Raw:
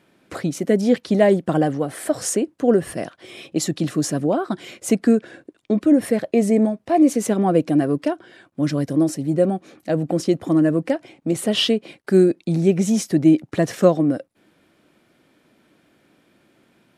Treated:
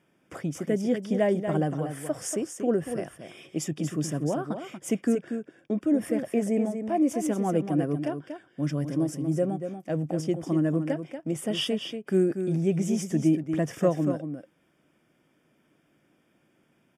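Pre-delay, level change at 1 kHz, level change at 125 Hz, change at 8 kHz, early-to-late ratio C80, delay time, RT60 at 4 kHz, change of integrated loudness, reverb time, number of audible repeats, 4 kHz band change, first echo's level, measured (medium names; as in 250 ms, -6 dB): no reverb, -8.5 dB, -5.0 dB, -8.5 dB, no reverb, 237 ms, no reverb, -8.0 dB, no reverb, 1, -9.0 dB, -8.0 dB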